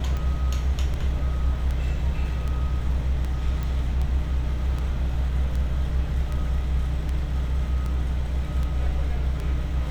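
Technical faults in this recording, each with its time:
tick 78 rpm -19 dBFS
3.63 pop

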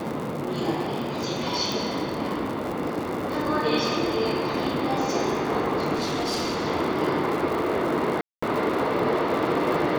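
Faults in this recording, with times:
crackle 110/s -29 dBFS
1.72 pop
5.95–6.65 clipped -23 dBFS
8.21–8.43 gap 0.215 s

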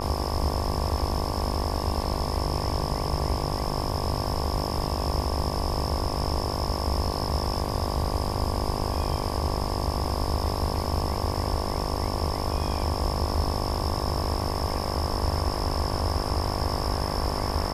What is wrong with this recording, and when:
buzz 50 Hz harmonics 23 -31 dBFS

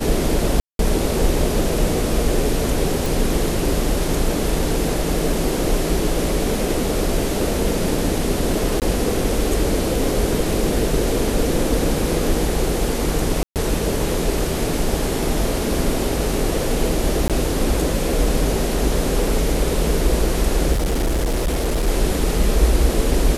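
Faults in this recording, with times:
0.6–0.79 gap 0.192 s
3.06 pop
8.8–8.82 gap 18 ms
13.43–13.56 gap 0.128 s
17.28–17.3 gap 17 ms
20.72–21.88 clipped -16 dBFS

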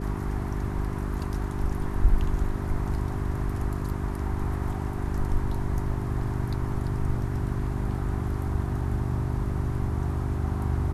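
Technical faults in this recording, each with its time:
hum 50 Hz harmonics 8 -32 dBFS

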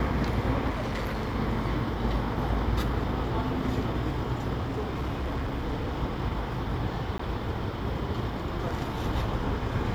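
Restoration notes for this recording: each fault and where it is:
0.69–1.36 clipped -27.5 dBFS
4.59–6.01 clipped -26.5 dBFS
7.18–7.19 gap 14 ms

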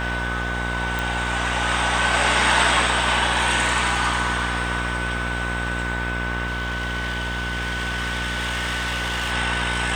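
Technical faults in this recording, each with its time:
buzz 60 Hz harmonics 36 -28 dBFS
tone 1500 Hz -28 dBFS
0.99 pop
6.46–9.33 clipped -21.5 dBFS

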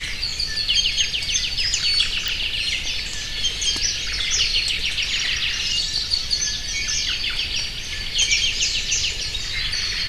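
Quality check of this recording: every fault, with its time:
2.28 pop

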